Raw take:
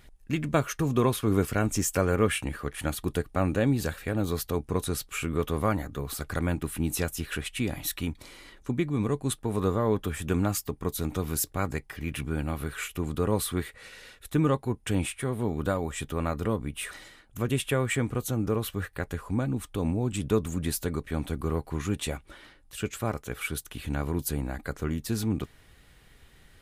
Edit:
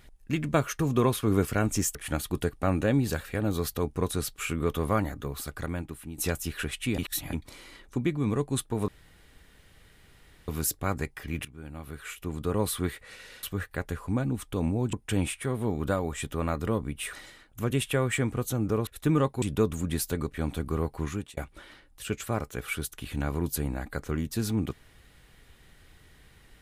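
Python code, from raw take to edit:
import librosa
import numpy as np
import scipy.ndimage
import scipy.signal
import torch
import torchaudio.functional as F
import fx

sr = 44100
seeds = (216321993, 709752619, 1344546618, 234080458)

y = fx.edit(x, sr, fx.cut(start_s=1.95, length_s=0.73),
    fx.fade_out_to(start_s=5.87, length_s=1.04, floor_db=-14.0),
    fx.reverse_span(start_s=7.71, length_s=0.35),
    fx.room_tone_fill(start_s=9.61, length_s=1.6),
    fx.fade_in_from(start_s=12.18, length_s=1.33, floor_db=-19.0),
    fx.swap(start_s=14.16, length_s=0.55, other_s=18.65, other_length_s=1.5),
    fx.fade_out_span(start_s=21.78, length_s=0.32), tone=tone)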